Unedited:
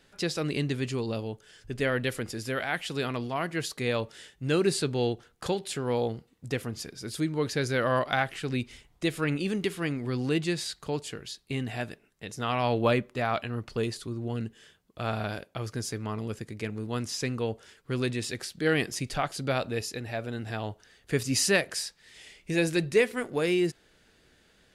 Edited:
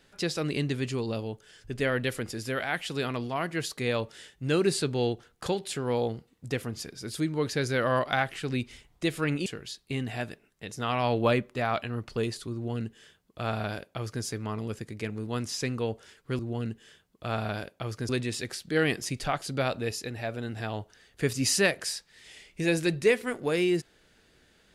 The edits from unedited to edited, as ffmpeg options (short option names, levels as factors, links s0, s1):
-filter_complex "[0:a]asplit=4[s0][s1][s2][s3];[s0]atrim=end=9.462[s4];[s1]atrim=start=11.058:end=17.992[s5];[s2]atrim=start=14.138:end=15.842[s6];[s3]atrim=start=17.988[s7];[s4][s5]acrossfade=d=0.004:c1=hsin:c2=hsin[s8];[s8][s6]acrossfade=d=0.004:c1=hsin:c2=hsin[s9];[s9][s7]acrossfade=d=0.004:c1=hsin:c2=hsin"